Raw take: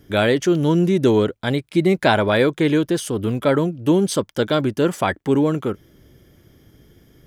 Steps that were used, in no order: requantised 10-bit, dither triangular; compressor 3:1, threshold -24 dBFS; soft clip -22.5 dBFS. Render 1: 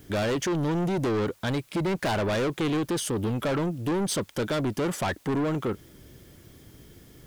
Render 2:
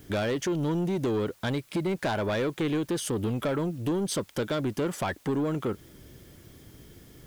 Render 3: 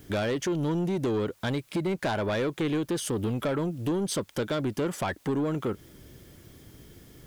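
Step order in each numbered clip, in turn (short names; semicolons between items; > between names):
requantised > soft clip > compressor; compressor > requantised > soft clip; requantised > compressor > soft clip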